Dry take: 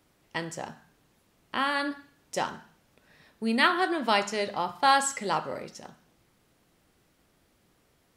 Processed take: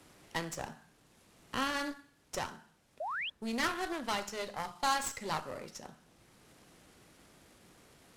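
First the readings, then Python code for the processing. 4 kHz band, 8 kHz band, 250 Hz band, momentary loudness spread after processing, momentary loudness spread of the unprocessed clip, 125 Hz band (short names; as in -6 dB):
-7.5 dB, -5.5 dB, -8.0 dB, 15 LU, 17 LU, -4.0 dB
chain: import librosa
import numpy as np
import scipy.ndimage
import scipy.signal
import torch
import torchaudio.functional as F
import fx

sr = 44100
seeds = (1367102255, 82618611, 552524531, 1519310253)

y = fx.cvsd(x, sr, bps=64000)
y = fx.dynamic_eq(y, sr, hz=5900.0, q=1.4, threshold_db=-49.0, ratio=4.0, max_db=5)
y = fx.rider(y, sr, range_db=4, speed_s=2.0)
y = fx.cheby_harmonics(y, sr, harmonics=(3, 6, 8), levels_db=(-17, -19, -44), full_scale_db=-10.0)
y = fx.spec_paint(y, sr, seeds[0], shape='rise', start_s=3.0, length_s=0.3, low_hz=570.0, high_hz=3500.0, level_db=-35.0)
y = fx.band_squash(y, sr, depth_pct=40)
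y = y * librosa.db_to_amplitude(-4.0)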